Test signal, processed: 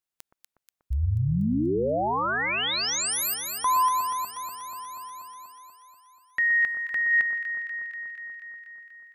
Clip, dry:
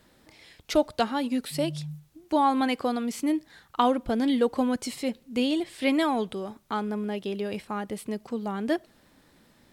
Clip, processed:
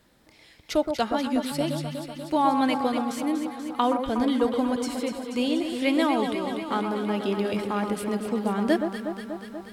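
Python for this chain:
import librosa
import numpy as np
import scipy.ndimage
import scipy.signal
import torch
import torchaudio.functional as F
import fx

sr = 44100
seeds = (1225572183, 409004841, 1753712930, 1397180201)

y = fx.echo_alternate(x, sr, ms=121, hz=1400.0, feedback_pct=83, wet_db=-6)
y = fx.rider(y, sr, range_db=4, speed_s=2.0)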